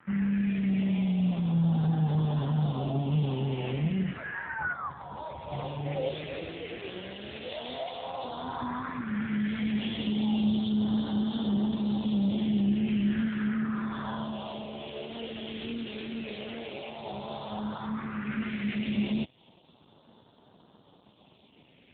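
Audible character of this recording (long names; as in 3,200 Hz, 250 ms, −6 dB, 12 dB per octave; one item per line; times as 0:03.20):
a quantiser's noise floor 8 bits, dither none
phaser sweep stages 4, 0.11 Hz, lowest notch 170–2,100 Hz
AMR narrowband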